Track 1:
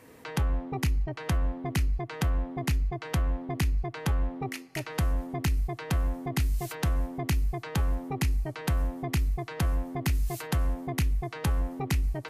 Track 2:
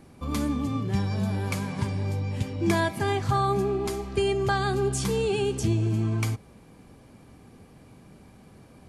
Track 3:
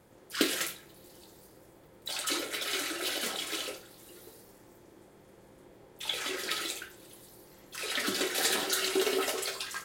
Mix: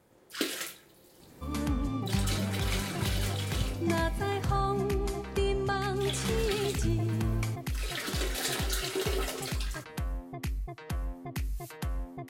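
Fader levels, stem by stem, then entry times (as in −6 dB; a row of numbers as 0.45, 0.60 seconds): −7.5, −5.5, −4.0 decibels; 1.30, 1.20, 0.00 seconds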